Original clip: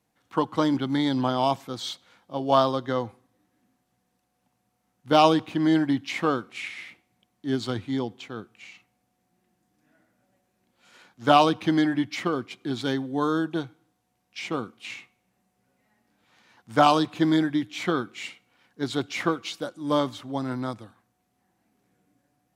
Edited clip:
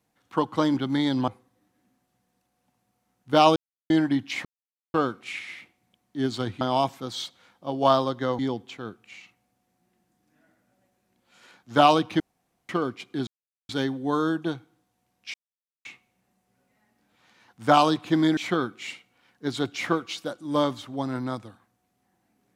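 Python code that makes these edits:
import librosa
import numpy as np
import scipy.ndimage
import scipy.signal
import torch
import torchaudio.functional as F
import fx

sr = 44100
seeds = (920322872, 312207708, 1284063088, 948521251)

y = fx.edit(x, sr, fx.move(start_s=1.28, length_s=1.78, to_s=7.9),
    fx.silence(start_s=5.34, length_s=0.34),
    fx.insert_silence(at_s=6.23, length_s=0.49),
    fx.room_tone_fill(start_s=11.71, length_s=0.49),
    fx.insert_silence(at_s=12.78, length_s=0.42),
    fx.silence(start_s=14.43, length_s=0.51),
    fx.cut(start_s=17.46, length_s=0.27), tone=tone)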